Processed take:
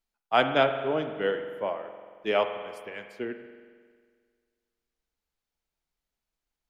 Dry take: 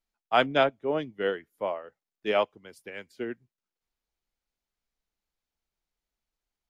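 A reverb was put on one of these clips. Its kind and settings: spring tank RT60 1.8 s, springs 45 ms, chirp 40 ms, DRR 7.5 dB

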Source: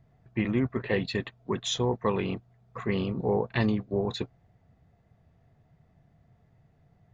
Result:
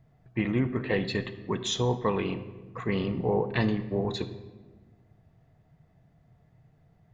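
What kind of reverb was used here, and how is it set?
shoebox room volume 960 m³, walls mixed, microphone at 0.52 m

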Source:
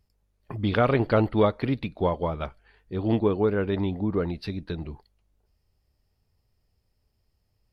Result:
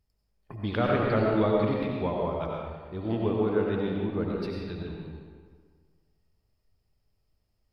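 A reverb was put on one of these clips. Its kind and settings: digital reverb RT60 1.7 s, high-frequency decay 0.7×, pre-delay 50 ms, DRR -2 dB; gain -6.5 dB

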